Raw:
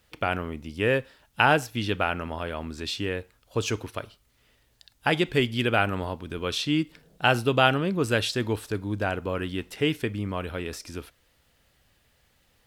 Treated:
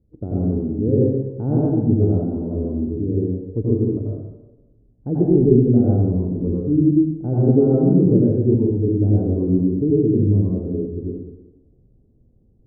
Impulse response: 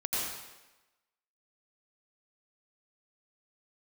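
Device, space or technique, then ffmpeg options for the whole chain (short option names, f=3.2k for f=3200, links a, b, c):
next room: -filter_complex "[0:a]lowpass=f=370:w=0.5412,lowpass=f=370:w=1.3066[a];[1:a]atrim=start_sample=2205[b];[a][b]afir=irnorm=-1:irlink=0,volume=7.5dB"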